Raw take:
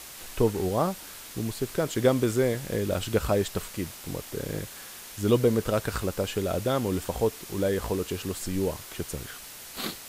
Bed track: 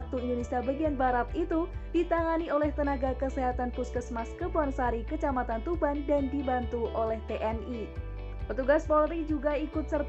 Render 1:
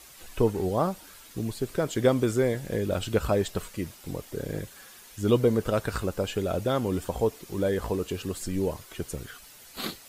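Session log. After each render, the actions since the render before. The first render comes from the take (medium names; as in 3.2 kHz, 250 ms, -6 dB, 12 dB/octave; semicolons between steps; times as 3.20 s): noise reduction 9 dB, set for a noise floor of -44 dBFS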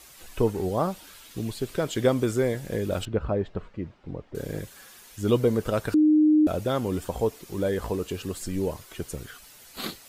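0.89–2.04 s: peaking EQ 3.2 kHz +4.5 dB 0.98 oct; 3.05–4.35 s: tape spacing loss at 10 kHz 42 dB; 5.94–6.47 s: bleep 306 Hz -15 dBFS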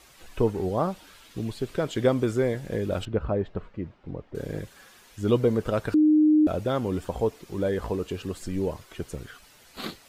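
low-pass 3.9 kHz 6 dB/octave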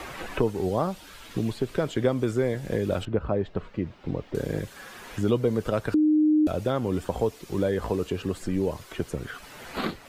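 three bands compressed up and down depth 70%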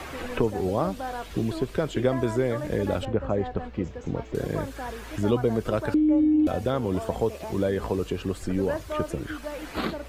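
add bed track -6.5 dB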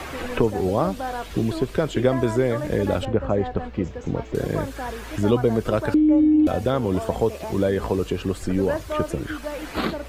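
trim +4 dB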